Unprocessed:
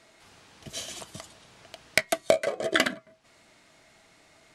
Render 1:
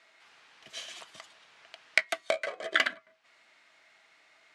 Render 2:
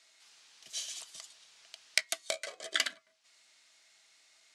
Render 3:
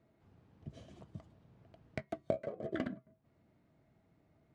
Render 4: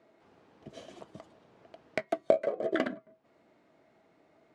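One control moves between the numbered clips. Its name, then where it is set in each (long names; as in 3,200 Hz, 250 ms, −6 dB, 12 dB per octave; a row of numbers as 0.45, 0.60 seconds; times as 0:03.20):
resonant band-pass, frequency: 2,000, 5,600, 110, 370 Hertz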